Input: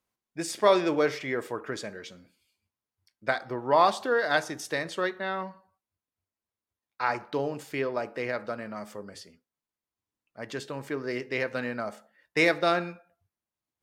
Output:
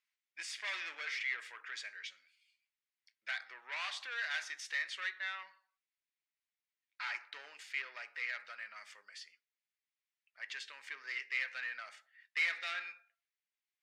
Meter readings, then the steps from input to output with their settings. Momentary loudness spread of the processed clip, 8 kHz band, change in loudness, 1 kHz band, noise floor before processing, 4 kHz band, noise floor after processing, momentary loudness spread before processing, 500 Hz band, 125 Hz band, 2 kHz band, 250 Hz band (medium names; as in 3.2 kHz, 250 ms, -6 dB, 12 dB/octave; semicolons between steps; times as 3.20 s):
15 LU, -9.0 dB, -11.0 dB, -20.5 dB, under -85 dBFS, -6.0 dB, under -85 dBFS, 18 LU, -33.5 dB, under -40 dB, -5.5 dB, under -40 dB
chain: treble shelf 3.6 kHz +10 dB; saturation -26 dBFS, distortion -6 dB; ladder band-pass 2.4 kHz, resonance 45%; trim +6.5 dB